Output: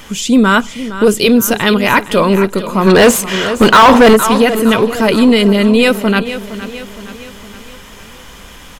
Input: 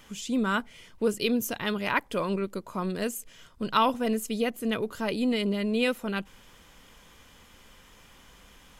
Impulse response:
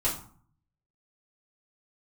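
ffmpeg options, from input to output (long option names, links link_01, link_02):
-filter_complex "[0:a]asplit=2[link_01][link_02];[1:a]atrim=start_sample=2205[link_03];[link_02][link_03]afir=irnorm=-1:irlink=0,volume=-30.5dB[link_04];[link_01][link_04]amix=inputs=2:normalize=0,asplit=3[link_05][link_06][link_07];[link_05]afade=type=out:start_time=2.86:duration=0.02[link_08];[link_06]asplit=2[link_09][link_10];[link_10]highpass=frequency=720:poles=1,volume=28dB,asoftclip=type=tanh:threshold=-10dB[link_11];[link_09][link_11]amix=inputs=2:normalize=0,lowpass=frequency=1600:poles=1,volume=-6dB,afade=type=in:start_time=2.86:duration=0.02,afade=type=out:start_time=4.15:duration=0.02[link_12];[link_07]afade=type=in:start_time=4.15:duration=0.02[link_13];[link_08][link_12][link_13]amix=inputs=3:normalize=0,aecho=1:1:464|928|1392|1856|2320:0.188|0.0961|0.049|0.025|0.0127,apsyclip=20dB,volume=-2dB"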